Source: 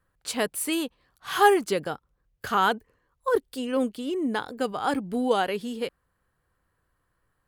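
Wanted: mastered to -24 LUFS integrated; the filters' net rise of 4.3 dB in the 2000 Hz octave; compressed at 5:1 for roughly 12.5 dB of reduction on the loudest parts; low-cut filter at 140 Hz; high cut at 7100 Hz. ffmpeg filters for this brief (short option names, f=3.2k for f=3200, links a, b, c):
-af "highpass=140,lowpass=7.1k,equalizer=f=2k:t=o:g=6,acompressor=threshold=-25dB:ratio=5,volume=7dB"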